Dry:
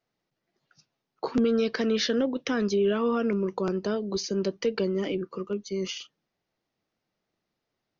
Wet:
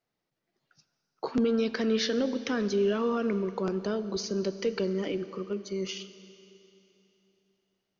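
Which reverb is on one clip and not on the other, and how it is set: Schroeder reverb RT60 3.1 s, combs from 28 ms, DRR 12.5 dB; gain -2.5 dB

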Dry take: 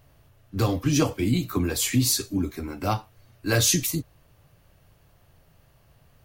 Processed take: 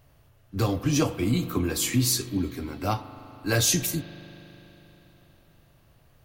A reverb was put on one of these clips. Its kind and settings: spring tank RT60 3.9 s, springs 40 ms, chirp 30 ms, DRR 12 dB; gain -1.5 dB

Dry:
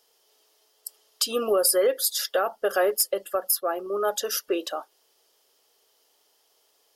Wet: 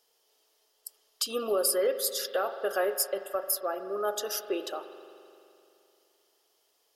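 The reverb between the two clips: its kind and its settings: spring tank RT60 2.7 s, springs 43 ms, chirp 50 ms, DRR 9.5 dB; gain -5.5 dB

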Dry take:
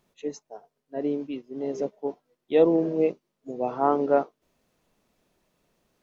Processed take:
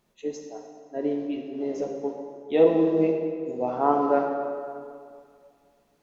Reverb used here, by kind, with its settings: plate-style reverb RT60 2.2 s, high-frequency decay 0.7×, DRR 1 dB; gain -1 dB

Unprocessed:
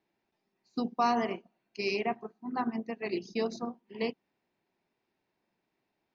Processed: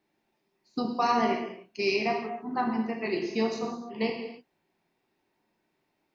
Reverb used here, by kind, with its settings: non-linear reverb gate 0.33 s falling, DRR 1 dB; gain +2.5 dB

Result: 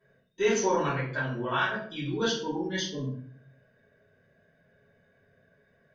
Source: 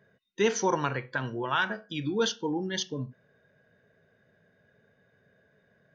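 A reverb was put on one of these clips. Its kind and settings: shoebox room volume 61 m³, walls mixed, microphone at 2.9 m; gain -12 dB

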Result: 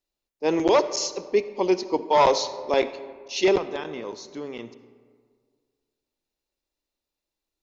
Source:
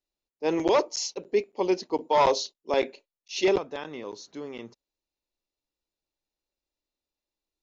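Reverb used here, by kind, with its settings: digital reverb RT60 1.9 s, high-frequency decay 0.45×, pre-delay 25 ms, DRR 13.5 dB; gain +3 dB

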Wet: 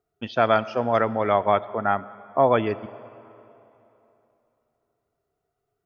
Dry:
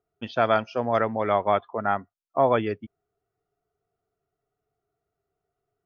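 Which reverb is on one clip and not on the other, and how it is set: digital reverb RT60 3.1 s, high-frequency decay 0.75×, pre-delay 35 ms, DRR 17.5 dB; gain +2 dB

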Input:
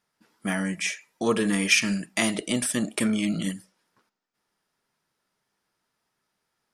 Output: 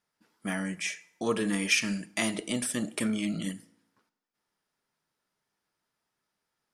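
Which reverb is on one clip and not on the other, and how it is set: FDN reverb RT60 0.84 s, low-frequency decay 1×, high-frequency decay 0.7×, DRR 16 dB; gain -5 dB

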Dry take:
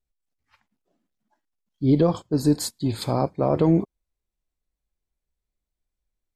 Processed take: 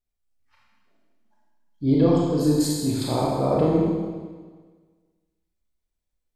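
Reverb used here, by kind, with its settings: Schroeder reverb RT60 1.5 s, combs from 26 ms, DRR -4 dB; gain -4 dB

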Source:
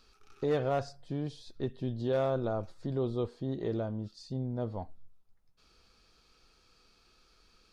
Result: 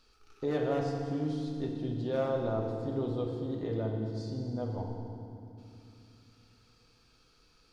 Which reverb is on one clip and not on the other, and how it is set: FDN reverb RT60 2.6 s, low-frequency decay 1.5×, high-frequency decay 0.85×, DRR 0.5 dB; gain -3 dB

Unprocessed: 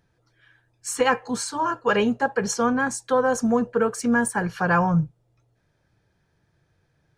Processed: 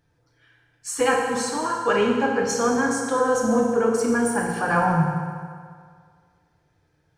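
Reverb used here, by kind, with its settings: FDN reverb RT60 2 s, low-frequency decay 0.85×, high-frequency decay 0.8×, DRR -1.5 dB; gain -2.5 dB

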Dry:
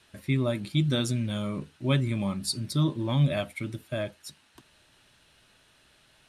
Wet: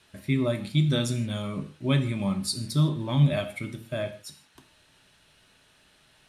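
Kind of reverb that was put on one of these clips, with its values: non-linear reverb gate 0.19 s falling, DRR 7 dB

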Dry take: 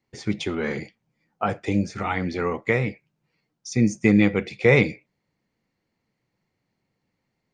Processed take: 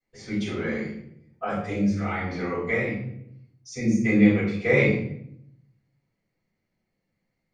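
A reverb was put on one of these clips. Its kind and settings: shoebox room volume 150 m³, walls mixed, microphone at 5.3 m; gain -18.5 dB

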